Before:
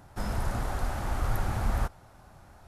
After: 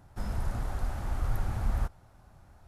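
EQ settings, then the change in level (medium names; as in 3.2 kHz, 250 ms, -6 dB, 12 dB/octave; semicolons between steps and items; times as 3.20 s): bass shelf 170 Hz +7 dB; -7.0 dB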